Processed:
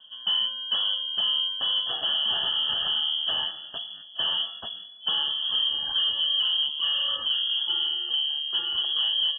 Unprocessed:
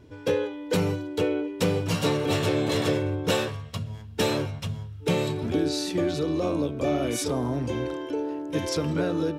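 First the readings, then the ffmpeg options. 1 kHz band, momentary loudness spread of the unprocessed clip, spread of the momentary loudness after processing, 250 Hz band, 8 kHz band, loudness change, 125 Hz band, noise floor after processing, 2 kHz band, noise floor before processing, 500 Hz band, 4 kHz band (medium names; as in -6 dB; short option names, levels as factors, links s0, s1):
-6.5 dB, 6 LU, 6 LU, under -25 dB, under -40 dB, +3.0 dB, under -25 dB, -45 dBFS, -4.5 dB, -42 dBFS, -23.0 dB, +15.5 dB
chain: -filter_complex "[0:a]highpass=190,equalizer=f=600:w=0.64:g=3.5,asplit=2[s0][s1];[s1]adelay=874.6,volume=0.0891,highshelf=f=4000:g=-19.7[s2];[s0][s2]amix=inputs=2:normalize=0,aresample=16000,asoftclip=type=hard:threshold=0.0944,aresample=44100,asuperstop=centerf=1100:order=20:qfactor=1.1,alimiter=limit=0.112:level=0:latency=1:release=255,lowpass=f=3000:t=q:w=0.5098,lowpass=f=3000:t=q:w=0.6013,lowpass=f=3000:t=q:w=0.9,lowpass=f=3000:t=q:w=2.563,afreqshift=-3500,volume=1.19"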